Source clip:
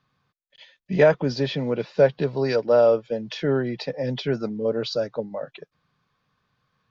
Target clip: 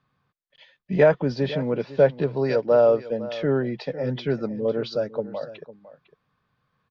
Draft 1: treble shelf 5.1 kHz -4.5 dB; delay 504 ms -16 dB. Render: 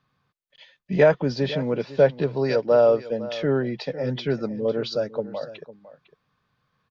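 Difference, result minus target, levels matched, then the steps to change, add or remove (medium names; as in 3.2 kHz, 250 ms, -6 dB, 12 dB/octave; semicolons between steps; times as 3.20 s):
8 kHz band +5.5 dB
change: treble shelf 5.1 kHz -14.5 dB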